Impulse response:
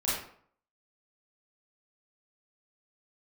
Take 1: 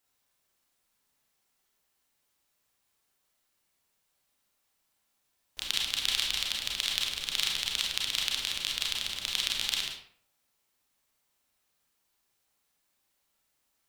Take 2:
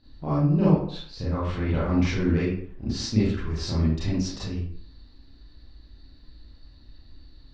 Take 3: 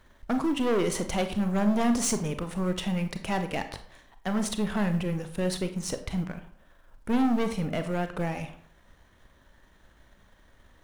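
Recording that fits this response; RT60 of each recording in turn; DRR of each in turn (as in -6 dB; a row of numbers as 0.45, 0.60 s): 2; 0.55, 0.55, 0.55 s; -2.0, -9.5, 8.0 dB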